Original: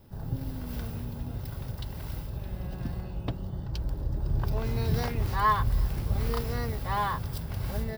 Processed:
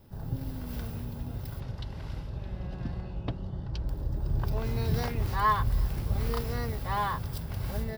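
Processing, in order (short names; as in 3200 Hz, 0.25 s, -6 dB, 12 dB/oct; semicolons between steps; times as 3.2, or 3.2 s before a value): 1.6–3.89 LPF 5400 Hz 12 dB/oct; gain -1 dB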